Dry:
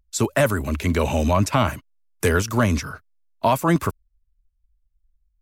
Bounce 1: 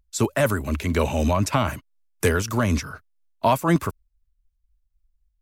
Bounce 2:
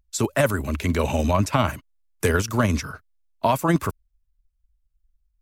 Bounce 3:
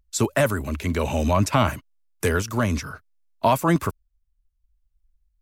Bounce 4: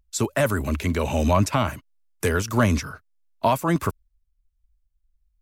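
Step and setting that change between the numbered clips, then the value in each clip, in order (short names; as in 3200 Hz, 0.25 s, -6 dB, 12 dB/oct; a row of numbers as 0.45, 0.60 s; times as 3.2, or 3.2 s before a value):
tremolo, rate: 4, 20, 0.59, 1.5 Hz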